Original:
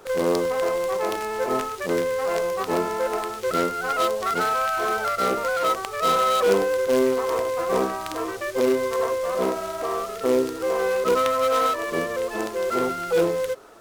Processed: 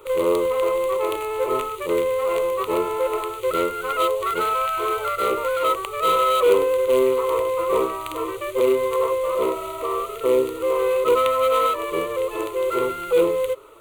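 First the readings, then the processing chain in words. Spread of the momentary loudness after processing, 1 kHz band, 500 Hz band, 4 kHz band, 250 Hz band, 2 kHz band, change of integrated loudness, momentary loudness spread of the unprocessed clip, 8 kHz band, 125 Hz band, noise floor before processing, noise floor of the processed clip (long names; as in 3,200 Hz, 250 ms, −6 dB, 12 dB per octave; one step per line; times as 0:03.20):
7 LU, +1.5 dB, +2.5 dB, 0.0 dB, −1.0 dB, −3.0 dB, +2.0 dB, 6 LU, −2.5 dB, −3.5 dB, −34 dBFS, −33 dBFS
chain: phaser with its sweep stopped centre 1,100 Hz, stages 8
level +3.5 dB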